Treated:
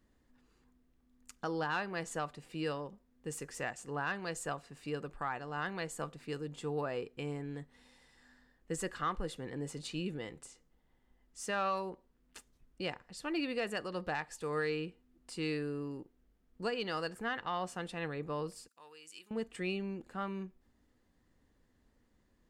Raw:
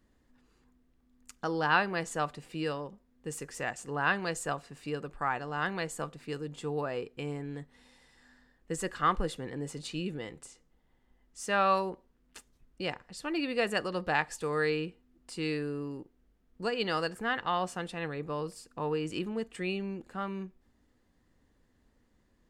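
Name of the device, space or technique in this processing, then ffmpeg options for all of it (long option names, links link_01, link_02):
soft clipper into limiter: -filter_complex "[0:a]asoftclip=type=tanh:threshold=-16dB,alimiter=limit=-23dB:level=0:latency=1:release=469,asettb=1/sr,asplit=3[link_01][link_02][link_03];[link_01]atrim=end=18.684[link_04];[link_02]atrim=start=18.68:end=19.31,asetpts=PTS-STARTPTS,afade=type=in:duration=0.004:curve=qsin,afade=type=out:start_time=0.626:duration=0.004:curve=qsin,aderivative[link_05];[link_03]atrim=start=19.306[link_06];[link_04][link_05]acrossfade=duration=0.004:curve1=hsin:curve2=qsin[link_07];[link_07][link_06]acrossfade=duration=0.004:curve1=qsin:curve2=hsin,volume=-2.5dB"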